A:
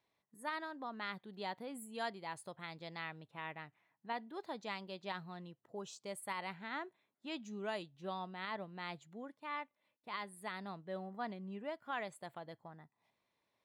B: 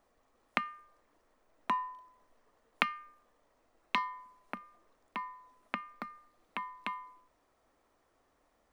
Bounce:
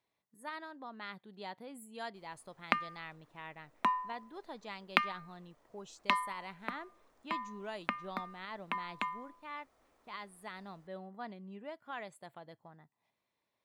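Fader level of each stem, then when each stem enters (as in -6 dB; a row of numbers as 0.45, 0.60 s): -2.5, +1.5 dB; 0.00, 2.15 s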